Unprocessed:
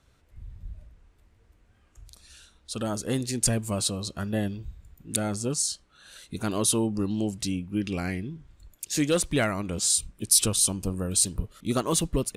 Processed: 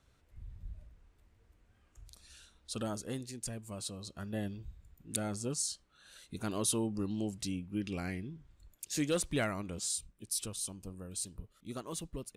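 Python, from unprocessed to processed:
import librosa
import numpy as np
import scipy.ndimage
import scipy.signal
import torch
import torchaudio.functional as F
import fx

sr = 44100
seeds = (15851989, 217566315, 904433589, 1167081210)

y = fx.gain(x, sr, db=fx.line((2.76, -5.5), (3.45, -17.0), (4.59, -8.0), (9.55, -8.0), (10.23, -16.0)))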